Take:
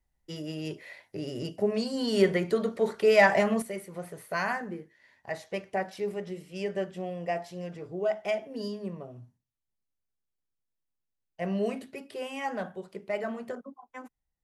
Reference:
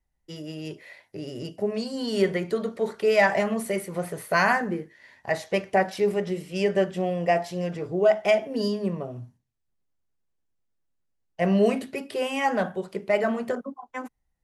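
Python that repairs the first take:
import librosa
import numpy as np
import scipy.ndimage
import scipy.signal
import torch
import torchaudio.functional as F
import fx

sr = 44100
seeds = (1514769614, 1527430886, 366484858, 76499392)

y = fx.gain(x, sr, db=fx.steps((0.0, 0.0), (3.62, 9.0)))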